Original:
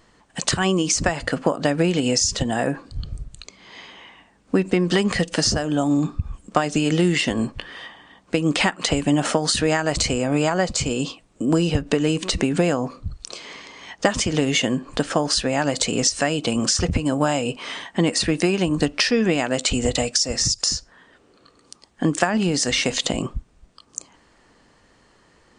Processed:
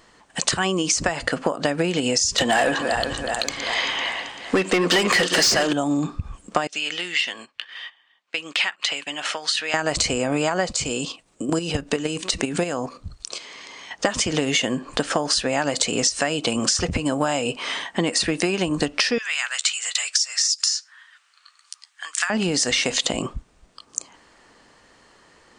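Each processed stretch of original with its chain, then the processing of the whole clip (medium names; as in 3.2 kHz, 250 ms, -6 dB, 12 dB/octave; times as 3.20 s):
2.38–5.73 s: backward echo that repeats 194 ms, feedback 70%, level -13 dB + overdrive pedal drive 21 dB, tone 6.4 kHz, clips at -5 dBFS
6.67–9.74 s: band-pass filter 2.8 kHz, Q 1.1 + gate -43 dBFS, range -13 dB
10.71–13.91 s: treble shelf 4.7 kHz +5 dB + level held to a coarse grid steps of 9 dB
19.18–22.30 s: high-pass 1.3 kHz 24 dB/octave + doubling 13 ms -13.5 dB + transformer saturation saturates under 1.8 kHz
whole clip: bass shelf 290 Hz -8.5 dB; compression 3:1, threshold -23 dBFS; trim +4.5 dB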